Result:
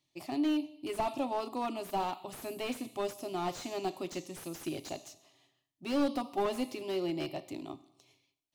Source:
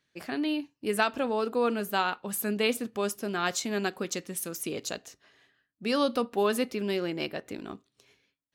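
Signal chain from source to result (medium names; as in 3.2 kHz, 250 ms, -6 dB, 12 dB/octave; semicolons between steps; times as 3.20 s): static phaser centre 310 Hz, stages 8; Schroeder reverb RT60 0.89 s, combs from 28 ms, DRR 16.5 dB; slew-rate limiter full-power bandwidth 32 Hz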